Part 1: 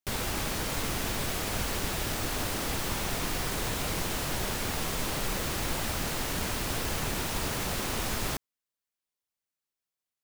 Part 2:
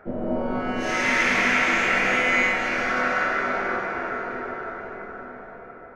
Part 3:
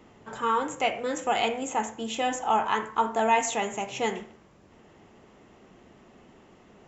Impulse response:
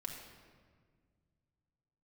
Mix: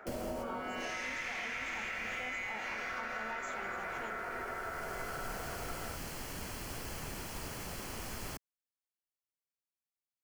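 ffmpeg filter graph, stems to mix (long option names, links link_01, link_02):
-filter_complex "[0:a]bandreject=frequency=3700:width=5.9,volume=-10.5dB[link_01];[1:a]highpass=frequency=1000:poles=1,acompressor=threshold=-33dB:ratio=2.5,equalizer=frequency=1500:width_type=o:width=0.77:gain=-2.5,volume=3dB[link_02];[2:a]volume=-14dB,asplit=2[link_03][link_04];[link_04]apad=whole_len=451294[link_05];[link_01][link_05]sidechaincompress=threshold=-47dB:ratio=8:attack=7:release=1300[link_06];[link_06][link_02][link_03]amix=inputs=3:normalize=0,acrossover=split=170[link_07][link_08];[link_08]acompressor=threshold=-37dB:ratio=6[link_09];[link_07][link_09]amix=inputs=2:normalize=0"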